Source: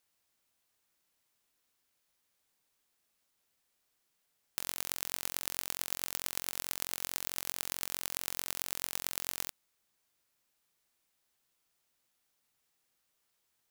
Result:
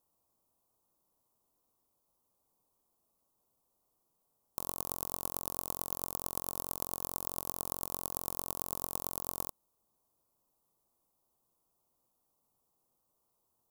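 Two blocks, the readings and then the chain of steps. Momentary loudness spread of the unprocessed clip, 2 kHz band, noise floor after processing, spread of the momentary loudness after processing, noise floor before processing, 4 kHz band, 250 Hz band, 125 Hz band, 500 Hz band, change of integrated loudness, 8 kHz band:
2 LU, -15.5 dB, -80 dBFS, 2 LU, -79 dBFS, -10.5 dB, +5.5 dB, +5.5 dB, +5.5 dB, -1.0 dB, -3.0 dB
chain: FFT filter 1.1 kHz 0 dB, 1.7 kHz -25 dB, 12 kHz -5 dB; trim +5.5 dB

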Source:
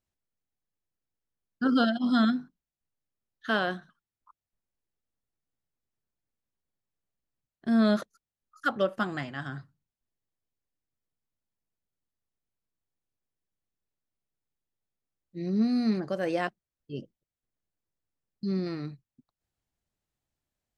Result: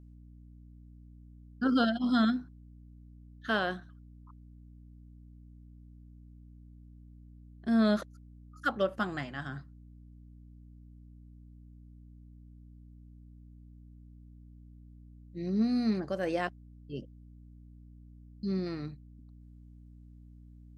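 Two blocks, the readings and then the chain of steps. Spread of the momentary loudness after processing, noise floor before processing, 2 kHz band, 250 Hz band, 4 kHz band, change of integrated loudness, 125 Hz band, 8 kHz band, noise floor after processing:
17 LU, under -85 dBFS, -2.5 dB, -2.5 dB, -2.5 dB, -3.0 dB, -1.5 dB, no reading, -53 dBFS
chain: hum 60 Hz, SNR 16 dB; trim -2.5 dB

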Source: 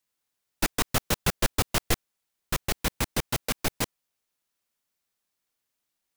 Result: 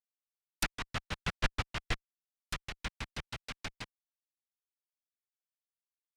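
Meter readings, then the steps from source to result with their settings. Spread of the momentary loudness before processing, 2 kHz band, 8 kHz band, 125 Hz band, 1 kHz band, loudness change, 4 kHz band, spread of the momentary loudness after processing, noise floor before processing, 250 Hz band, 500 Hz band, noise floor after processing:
6 LU, -6.5 dB, -15.5 dB, -9.5 dB, -9.5 dB, -10.5 dB, -9.0 dB, 9 LU, -82 dBFS, -13.0 dB, -14.5 dB, under -85 dBFS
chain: low-pass that closes with the level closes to 2.4 kHz, closed at -24.5 dBFS; amplifier tone stack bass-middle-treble 5-5-5; upward expansion 2.5:1, over -56 dBFS; trim +11 dB

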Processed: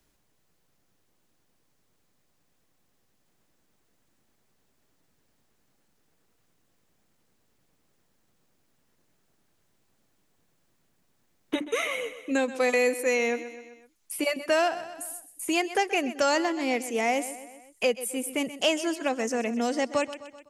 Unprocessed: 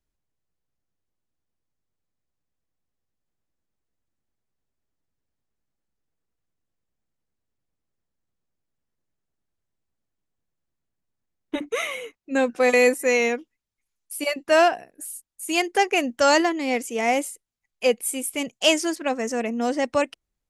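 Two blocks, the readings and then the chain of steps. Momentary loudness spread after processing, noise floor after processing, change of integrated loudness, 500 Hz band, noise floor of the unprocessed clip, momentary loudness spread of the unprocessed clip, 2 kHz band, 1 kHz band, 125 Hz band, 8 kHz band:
11 LU, -70 dBFS, -5.0 dB, -4.5 dB, -82 dBFS, 15 LU, -4.5 dB, -5.5 dB, no reading, -4.5 dB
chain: feedback delay 127 ms, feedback 40%, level -15.5 dB; three bands compressed up and down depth 70%; trim -4.5 dB

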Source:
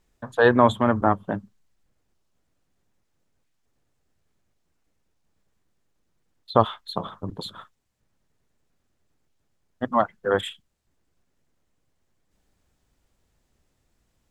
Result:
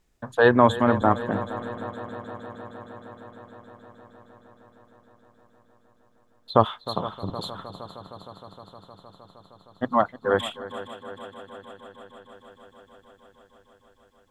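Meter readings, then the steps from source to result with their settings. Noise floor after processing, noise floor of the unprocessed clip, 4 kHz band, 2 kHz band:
-62 dBFS, -73 dBFS, +0.5 dB, +0.5 dB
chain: multi-head delay 155 ms, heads second and third, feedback 73%, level -16 dB

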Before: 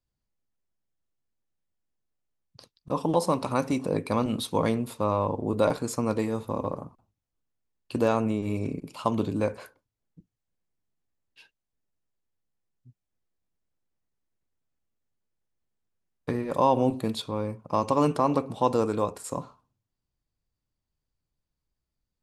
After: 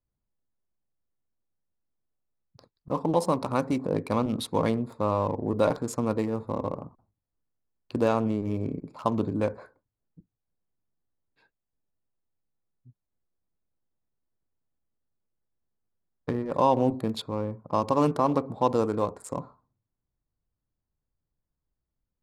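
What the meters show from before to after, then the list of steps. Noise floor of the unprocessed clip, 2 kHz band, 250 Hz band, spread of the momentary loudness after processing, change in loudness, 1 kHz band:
-85 dBFS, -2.0 dB, 0.0 dB, 10 LU, 0.0 dB, -0.5 dB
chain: local Wiener filter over 15 samples

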